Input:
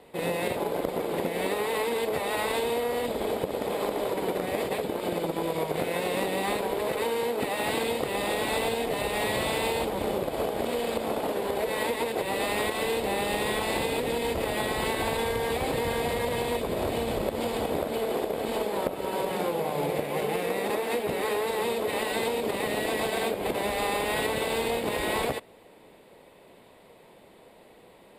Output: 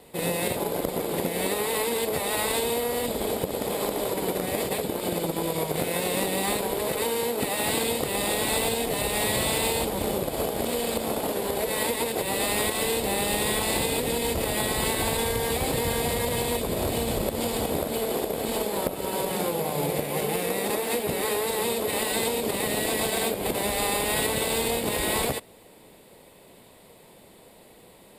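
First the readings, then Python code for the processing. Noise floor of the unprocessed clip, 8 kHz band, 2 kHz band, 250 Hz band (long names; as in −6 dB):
−54 dBFS, +10.5 dB, +1.0 dB, +2.5 dB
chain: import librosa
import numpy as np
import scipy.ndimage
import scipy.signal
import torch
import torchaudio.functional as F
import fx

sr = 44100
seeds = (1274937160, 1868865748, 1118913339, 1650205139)

y = fx.bass_treble(x, sr, bass_db=5, treble_db=11)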